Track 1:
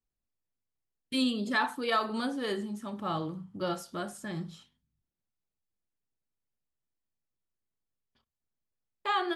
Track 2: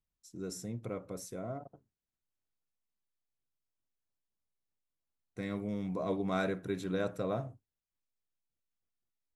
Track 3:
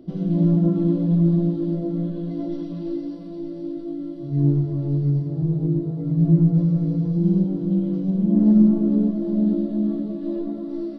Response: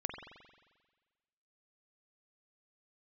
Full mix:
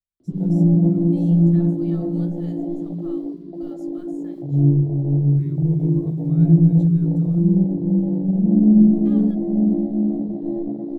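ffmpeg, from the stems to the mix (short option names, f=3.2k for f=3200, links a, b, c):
-filter_complex "[0:a]equalizer=f=6.9k:w=4.5:g=9,aeval=exprs='val(0)*gte(abs(val(0)),0.002)':c=same,volume=-17.5dB[a];[1:a]volume=-10dB[b];[2:a]afwtdn=0.0631,equalizer=f=79:t=o:w=1.5:g=5.5,adelay=200,volume=1.5dB[c];[a][b]amix=inputs=2:normalize=0,acrusher=bits=5:mode=log:mix=0:aa=0.000001,alimiter=level_in=19.5dB:limit=-24dB:level=0:latency=1:release=101,volume=-19.5dB,volume=0dB[d];[c][d]amix=inputs=2:normalize=0,acrossover=split=370|3000[e][f][g];[f]acompressor=threshold=-28dB:ratio=6[h];[e][h][g]amix=inputs=3:normalize=0"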